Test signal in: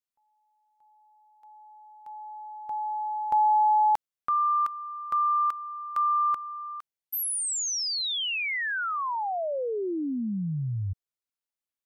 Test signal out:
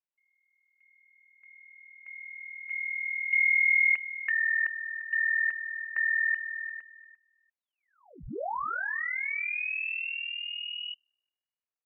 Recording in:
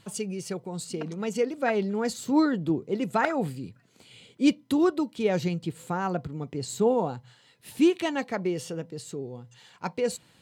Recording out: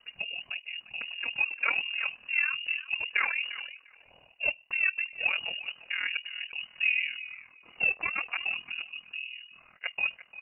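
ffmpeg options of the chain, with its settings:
-filter_complex "[0:a]acrossover=split=350[s0][s1];[s0]asoftclip=type=tanh:threshold=0.0237[s2];[s1]asplit=2[s3][s4];[s4]adelay=348,lowpass=f=2000:p=1,volume=0.211,asplit=2[s5][s6];[s6]adelay=348,lowpass=f=2000:p=1,volume=0.17[s7];[s3][s5][s7]amix=inputs=3:normalize=0[s8];[s2][s8]amix=inputs=2:normalize=0,lowpass=f=2600:t=q:w=0.5098,lowpass=f=2600:t=q:w=0.6013,lowpass=f=2600:t=q:w=0.9,lowpass=f=2600:t=q:w=2.563,afreqshift=-3000,aeval=exprs='val(0)*sin(2*PI*20*n/s)':c=same"

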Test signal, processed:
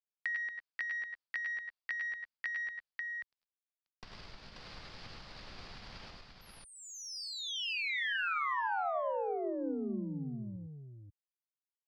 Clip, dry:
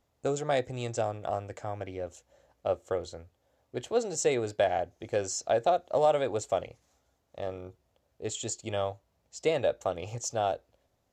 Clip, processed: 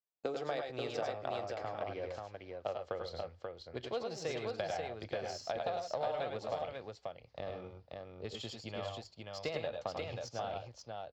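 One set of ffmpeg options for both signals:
-filter_complex "[0:a]agate=range=0.0224:threshold=0.00141:ratio=3:detection=peak,lowpass=f=4800:t=q:w=5.8,asubboost=boost=11.5:cutoff=95,acompressor=threshold=0.02:ratio=12,aeval=exprs='0.075*(cos(1*acos(clip(val(0)/0.075,-1,1)))-cos(1*PI/2))+0.00119*(cos(4*acos(clip(val(0)/0.075,-1,1)))-cos(4*PI/2))+0.00237*(cos(7*acos(clip(val(0)/0.075,-1,1)))-cos(7*PI/2))':c=same,acrossover=split=190 3400:gain=0.126 1 0.178[s0][s1][s2];[s0][s1][s2]amix=inputs=3:normalize=0,aecho=1:1:90|103|113|535:0.316|0.531|0.15|0.631,volume=1.12"

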